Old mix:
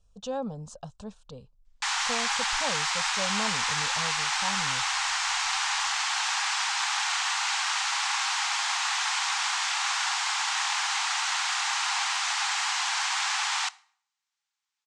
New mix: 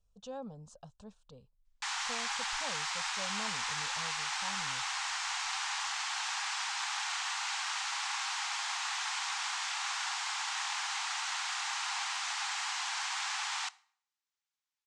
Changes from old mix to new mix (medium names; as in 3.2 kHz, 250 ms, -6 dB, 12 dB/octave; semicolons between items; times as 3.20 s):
speech -10.5 dB; background -8.0 dB